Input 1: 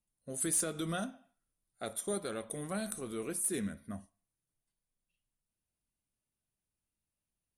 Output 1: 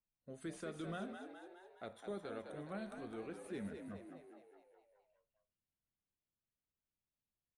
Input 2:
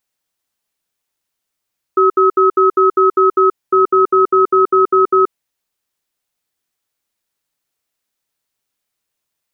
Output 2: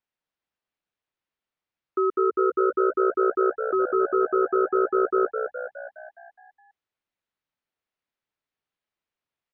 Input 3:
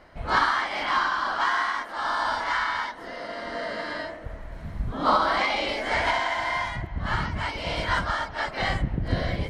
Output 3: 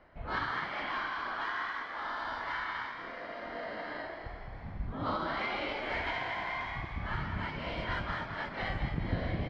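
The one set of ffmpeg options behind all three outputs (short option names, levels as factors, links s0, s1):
-filter_complex "[0:a]lowpass=3000,acrossover=split=580|1500[s0][s1][s2];[s1]acompressor=threshold=0.02:ratio=6[s3];[s0][s3][s2]amix=inputs=3:normalize=0,asplit=8[s4][s5][s6][s7][s8][s9][s10][s11];[s5]adelay=208,afreqshift=61,volume=0.447[s12];[s6]adelay=416,afreqshift=122,volume=0.254[s13];[s7]adelay=624,afreqshift=183,volume=0.145[s14];[s8]adelay=832,afreqshift=244,volume=0.0832[s15];[s9]adelay=1040,afreqshift=305,volume=0.0473[s16];[s10]adelay=1248,afreqshift=366,volume=0.0269[s17];[s11]adelay=1456,afreqshift=427,volume=0.0153[s18];[s4][s12][s13][s14][s15][s16][s17][s18]amix=inputs=8:normalize=0,volume=0.398"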